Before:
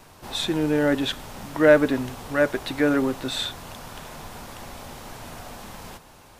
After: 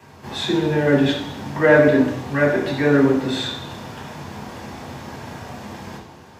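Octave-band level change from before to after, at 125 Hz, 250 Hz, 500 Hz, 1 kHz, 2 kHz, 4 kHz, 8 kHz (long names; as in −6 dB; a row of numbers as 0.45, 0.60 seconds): +9.0, +5.0, +4.0, +4.5, +5.0, +1.5, −2.0 decibels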